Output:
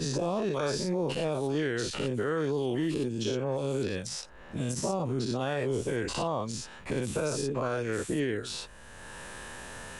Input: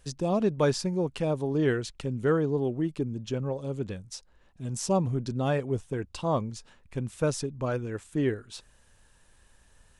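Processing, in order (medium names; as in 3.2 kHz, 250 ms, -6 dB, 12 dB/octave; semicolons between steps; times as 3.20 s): every event in the spectrogram widened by 120 ms; bass shelf 210 Hz -5 dB; in parallel at 0 dB: compression, threshold -28 dBFS, peak gain reduction 11 dB; on the sum: peak limiter -16 dBFS, peak gain reduction 10 dB; three bands compressed up and down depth 70%; trim -6 dB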